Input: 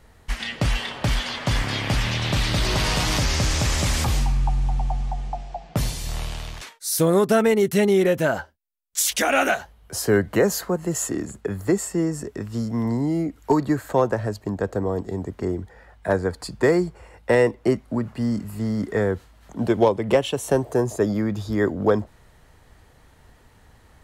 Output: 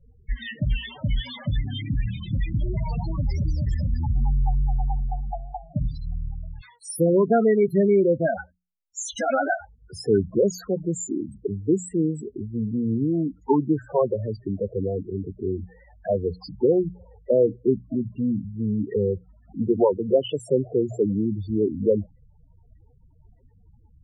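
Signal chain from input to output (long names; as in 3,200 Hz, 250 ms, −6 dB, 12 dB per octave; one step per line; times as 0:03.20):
pitch vibrato 3.3 Hz 68 cents
spectral peaks only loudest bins 8
mains-hum notches 60/120/180 Hz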